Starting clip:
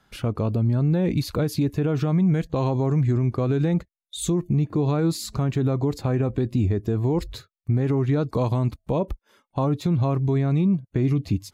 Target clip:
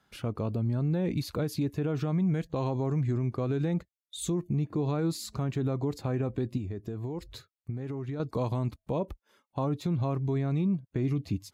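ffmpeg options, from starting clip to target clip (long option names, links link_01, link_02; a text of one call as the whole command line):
ffmpeg -i in.wav -filter_complex "[0:a]highpass=frequency=75:poles=1,asettb=1/sr,asplit=3[link_01][link_02][link_03];[link_01]atrim=end=6.574[link_04];[link_02]atrim=start=6.57:end=8.2,asetpts=PTS-STARTPTS,afade=type=in:duration=0.004:curve=qsin,afade=type=out:start_time=1.626:duration=0.004:curve=qsin,acompressor=threshold=-26dB:ratio=6[link_05];[link_03]atrim=start=8.196[link_06];[link_04][link_05]acrossfade=duration=0.004:curve1=hsin:curve2=qsin[link_07];[link_07][link_06]acrossfade=duration=0.004:curve1=qsin:curve2=hsin,volume=-6.5dB" out.wav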